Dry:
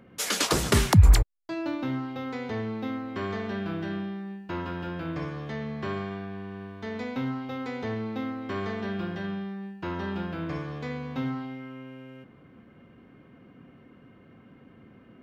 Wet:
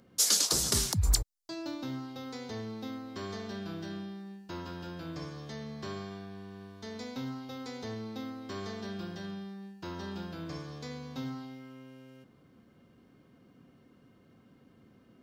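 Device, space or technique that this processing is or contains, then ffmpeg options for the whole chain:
over-bright horn tweeter: -af "highshelf=f=3500:t=q:w=1.5:g=12,alimiter=limit=0.596:level=0:latency=1:release=310,volume=0.422"

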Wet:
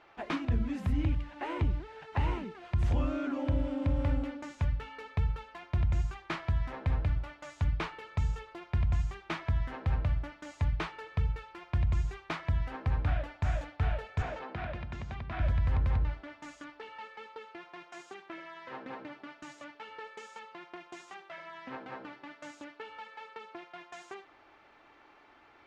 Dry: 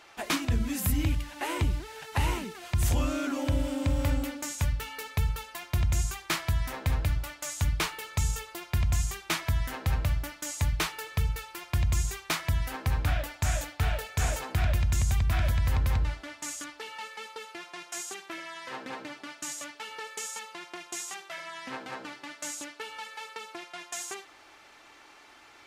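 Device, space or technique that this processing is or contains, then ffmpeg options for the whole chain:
phone in a pocket: -filter_complex "[0:a]lowpass=3700,highshelf=f=2200:g=-10.5,asettb=1/sr,asplit=3[s0][s1][s2];[s0]atrim=end=14.224[s3];[s1]atrim=start=14.22:end=15.4,asetpts=PTS-STARTPTS,afade=t=in:d=0.004:c=qsin,afade=t=out:st=1.176:d=0.004:c=qsin,acrossover=split=170 5700:gain=0.178 1 0.112[s4][s5][s6];[s4][s5][s6]amix=inputs=3:normalize=0[s7];[s2]atrim=start=15.396[s8];[s3][s7]acrossfade=d=0.004:c1=hsin:c2=qsin[s9];[s9][s8]acrossfade=d=0.004:c1=qsin:c2=hsin,volume=0.794"

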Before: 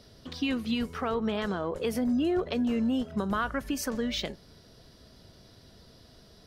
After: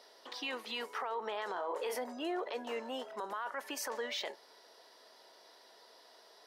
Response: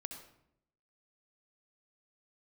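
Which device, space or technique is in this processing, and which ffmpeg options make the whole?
laptop speaker: -filter_complex "[0:a]asettb=1/sr,asplit=3[s0][s1][s2];[s0]atrim=end=1.524[s3];[s1]atrim=start=1.52:end=1.95,asetpts=PTS-STARTPTS,afade=t=in:d=0.004:c=qsin,afade=t=out:st=0.426:d=0.004:c=qsin,asplit=2[s4][s5];[s5]adelay=33,volume=0.562[s6];[s4][s6]amix=inputs=2:normalize=0,atrim=end_sample=18963[s7];[s2]atrim=start=1.946[s8];[s3][s7]acrossfade=d=0.004:c1=hsin:c2=qsin[s9];[s9][s8]acrossfade=d=0.004:c1=qsin:c2=hsin,highpass=f=420:w=0.5412,highpass=f=420:w=1.3066,equalizer=f=910:t=o:w=0.45:g=11,equalizer=f=1900:t=o:w=0.28:g=5.5,alimiter=level_in=1.41:limit=0.0631:level=0:latency=1:release=10,volume=0.708,volume=0.75"

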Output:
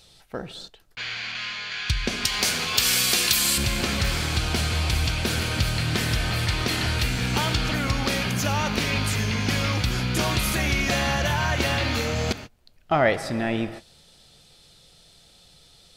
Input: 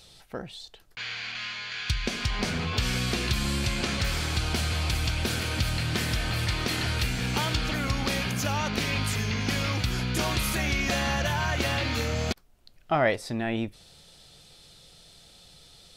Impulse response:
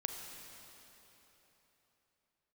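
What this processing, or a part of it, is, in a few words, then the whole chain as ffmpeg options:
keyed gated reverb: -filter_complex "[0:a]asettb=1/sr,asplit=3[s0][s1][s2];[s0]atrim=end=2.254[s3];[s1]atrim=start=2.25:end=3.58,asetpts=PTS-STARTPTS,afade=t=in:d=0.004:c=qsin,afade=t=out:st=1.326:d=0.004:c=qsin,aemphasis=mode=production:type=riaa[s4];[s2]atrim=start=3.576[s5];[s3][s4]acrossfade=d=0.004:c1=hsin:c2=qsin[s6];[s6][s5]acrossfade=d=0.004:c1=qsin:c2=hsin,asplit=3[s7][s8][s9];[1:a]atrim=start_sample=2205[s10];[s8][s10]afir=irnorm=-1:irlink=0[s11];[s9]apad=whole_len=704028[s12];[s11][s12]sidechaingate=range=0.0224:threshold=0.00708:ratio=16:detection=peak,volume=0.708[s13];[s7][s13]amix=inputs=2:normalize=0,volume=0.891"

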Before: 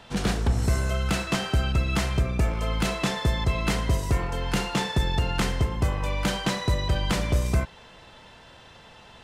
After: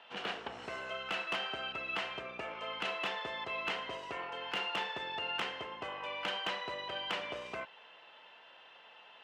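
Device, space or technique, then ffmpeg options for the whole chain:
megaphone: -af "highpass=570,lowpass=2700,equalizer=f=2900:t=o:w=0.33:g=10,asoftclip=type=hard:threshold=0.1,volume=0.473"

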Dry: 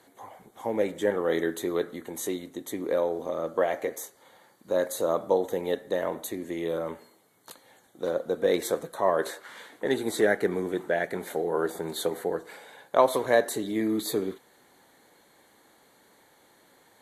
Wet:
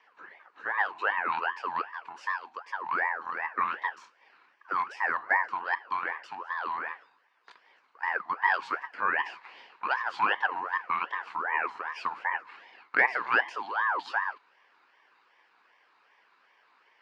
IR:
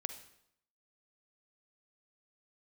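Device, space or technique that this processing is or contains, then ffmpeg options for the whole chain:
voice changer toy: -af "aeval=exprs='val(0)*sin(2*PI*960*n/s+960*0.5/2.6*sin(2*PI*2.6*n/s))':c=same,highpass=600,equalizer=f=630:t=q:w=4:g=-6,equalizer=f=1000:t=q:w=4:g=4,equalizer=f=1700:t=q:w=4:g=3,equalizer=f=3400:t=q:w=4:g=-6,lowpass=f=4100:w=0.5412,lowpass=f=4100:w=1.3066"

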